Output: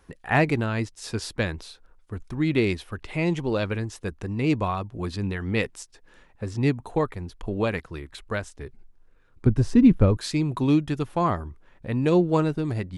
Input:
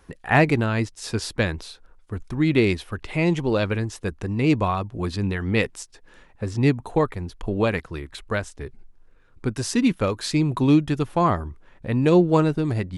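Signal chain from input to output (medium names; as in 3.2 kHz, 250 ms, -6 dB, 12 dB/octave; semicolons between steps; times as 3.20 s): 9.46–10.17 s: tilt EQ -4 dB/octave; trim -3.5 dB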